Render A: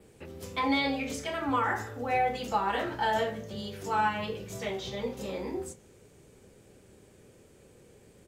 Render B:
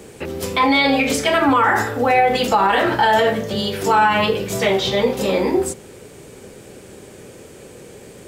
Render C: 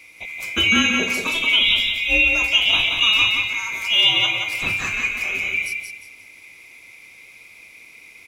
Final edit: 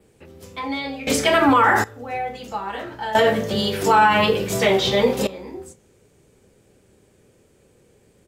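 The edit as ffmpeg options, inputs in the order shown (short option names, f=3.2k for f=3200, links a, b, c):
-filter_complex "[1:a]asplit=2[a][b];[0:a]asplit=3[c][d][e];[c]atrim=end=1.072[f];[a]atrim=start=1.068:end=1.842[g];[d]atrim=start=1.838:end=3.152[h];[b]atrim=start=3.148:end=5.272[i];[e]atrim=start=5.268[j];[f][g]acrossfade=d=0.004:c1=hsin:c2=hsin[k];[k][h]acrossfade=d=0.004:c1=hsin:c2=hsin[l];[l][i]acrossfade=d=0.004:c1=hsin:c2=hsin[m];[m][j]acrossfade=d=0.004:c1=hsin:c2=hsin"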